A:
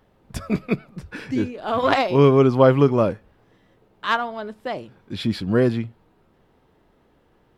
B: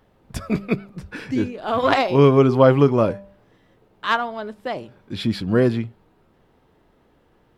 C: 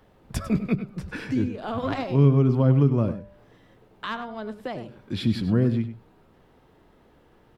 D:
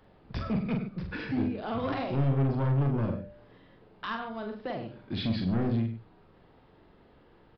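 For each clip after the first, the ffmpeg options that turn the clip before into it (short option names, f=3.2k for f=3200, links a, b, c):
-af "bandreject=f=197.7:t=h:w=4,bandreject=f=395.4:t=h:w=4,bandreject=f=593.1:t=h:w=4,bandreject=f=790.8:t=h:w=4,bandreject=f=988.5:t=h:w=4,volume=1dB"
-filter_complex "[0:a]acrossover=split=240[a][b];[b]acompressor=threshold=-35dB:ratio=3[c];[a][c]amix=inputs=2:normalize=0,asplit=2[d][e];[e]adelay=99.13,volume=-12dB,highshelf=f=4k:g=-2.23[f];[d][f]amix=inputs=2:normalize=0,volume=1.5dB"
-filter_complex "[0:a]aresample=11025,asoftclip=type=tanh:threshold=-22dB,aresample=44100,asplit=2[a][b];[b]adelay=44,volume=-5dB[c];[a][c]amix=inputs=2:normalize=0,volume=-2.5dB"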